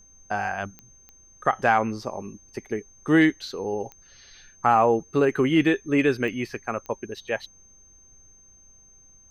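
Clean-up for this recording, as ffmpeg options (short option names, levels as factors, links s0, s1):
-af "adeclick=t=4,bandreject=f=6300:w=30,agate=range=0.0891:threshold=0.00501"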